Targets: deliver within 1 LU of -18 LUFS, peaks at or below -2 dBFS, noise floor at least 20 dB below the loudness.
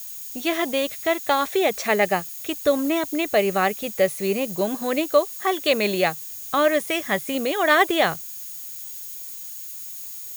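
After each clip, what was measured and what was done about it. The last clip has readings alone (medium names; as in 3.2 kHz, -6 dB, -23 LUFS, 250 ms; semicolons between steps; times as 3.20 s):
steady tone 6.7 kHz; tone level -45 dBFS; noise floor -36 dBFS; noise floor target -43 dBFS; loudness -23.0 LUFS; peak level -5.5 dBFS; loudness target -18.0 LUFS
-> band-stop 6.7 kHz, Q 30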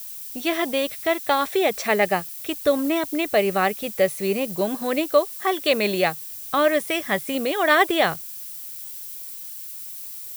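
steady tone not found; noise floor -36 dBFS; noise floor target -43 dBFS
-> noise print and reduce 7 dB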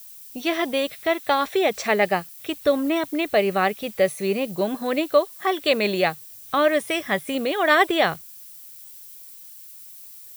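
noise floor -43 dBFS; loudness -22.5 LUFS; peak level -5.5 dBFS; loudness target -18.0 LUFS
-> trim +4.5 dB; peak limiter -2 dBFS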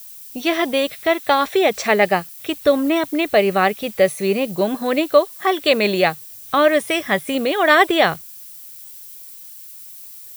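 loudness -18.0 LUFS; peak level -2.0 dBFS; noise floor -39 dBFS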